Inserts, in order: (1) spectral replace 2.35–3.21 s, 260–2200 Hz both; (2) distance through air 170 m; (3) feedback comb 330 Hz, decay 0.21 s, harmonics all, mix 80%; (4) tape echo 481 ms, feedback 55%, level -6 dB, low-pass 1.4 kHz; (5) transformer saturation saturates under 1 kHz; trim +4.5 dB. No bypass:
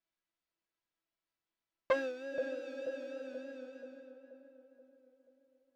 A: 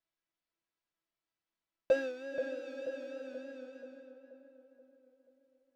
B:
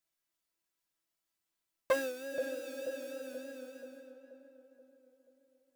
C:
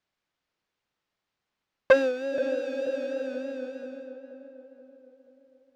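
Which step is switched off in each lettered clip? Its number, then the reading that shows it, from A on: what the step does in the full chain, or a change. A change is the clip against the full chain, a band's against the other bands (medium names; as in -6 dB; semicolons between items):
5, 1 kHz band -8.5 dB; 2, 4 kHz band +3.5 dB; 3, 1 kHz band -5.5 dB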